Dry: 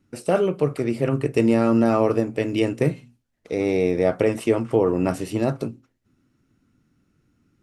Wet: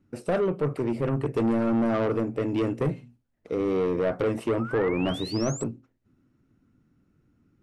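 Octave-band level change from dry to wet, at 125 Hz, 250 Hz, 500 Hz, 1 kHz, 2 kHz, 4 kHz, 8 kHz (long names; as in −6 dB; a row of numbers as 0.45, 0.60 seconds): −4.0, −4.5, −5.0, −4.5, −4.0, −0.5, 0.0 decibels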